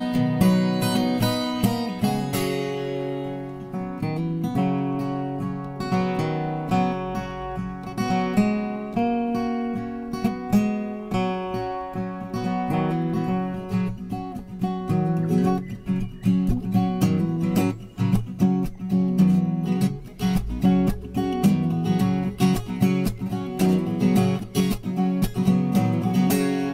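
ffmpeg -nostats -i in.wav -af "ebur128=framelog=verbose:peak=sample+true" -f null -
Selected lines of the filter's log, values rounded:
Integrated loudness:
  I:         -24.0 LUFS
  Threshold: -34.0 LUFS
Loudness range:
  LRA:         4.3 LU
  Threshold: -44.3 LUFS
  LRA low:   -26.6 LUFS
  LRA high:  -22.4 LUFS
Sample peak:
  Peak:       -7.7 dBFS
True peak:
  Peak:       -7.7 dBFS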